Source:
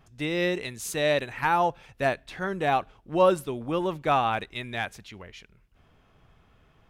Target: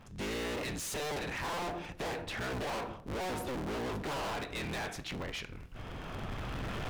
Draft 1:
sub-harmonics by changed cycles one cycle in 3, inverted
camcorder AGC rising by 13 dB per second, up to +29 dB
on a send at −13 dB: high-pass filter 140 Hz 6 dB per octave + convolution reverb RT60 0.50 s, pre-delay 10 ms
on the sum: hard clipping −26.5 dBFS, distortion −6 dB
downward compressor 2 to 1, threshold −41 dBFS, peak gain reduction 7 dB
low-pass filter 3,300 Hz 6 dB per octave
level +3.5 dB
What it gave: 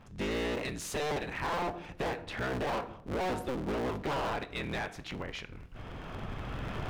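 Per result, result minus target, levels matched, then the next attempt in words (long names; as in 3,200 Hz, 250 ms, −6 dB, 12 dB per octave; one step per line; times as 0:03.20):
8,000 Hz band −5.0 dB; hard clipping: distortion −5 dB
sub-harmonics by changed cycles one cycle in 3, inverted
camcorder AGC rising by 13 dB per second, up to +29 dB
on a send at −13 dB: high-pass filter 140 Hz 6 dB per octave + convolution reverb RT60 0.50 s, pre-delay 10 ms
on the sum: hard clipping −26.5 dBFS, distortion −6 dB
downward compressor 2 to 1, threshold −41 dBFS, peak gain reduction 7 dB
low-pass filter 7,400 Hz 6 dB per octave
level +3.5 dB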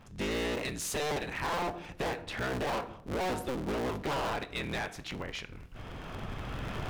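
hard clipping: distortion −5 dB
sub-harmonics by changed cycles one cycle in 3, inverted
camcorder AGC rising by 13 dB per second, up to +29 dB
on a send at −13 dB: high-pass filter 140 Hz 6 dB per octave + convolution reverb RT60 0.50 s, pre-delay 10 ms
on the sum: hard clipping −36.5 dBFS, distortion −1 dB
downward compressor 2 to 1, threshold −41 dBFS, peak gain reduction 2 dB
low-pass filter 7,400 Hz 6 dB per octave
level +3.5 dB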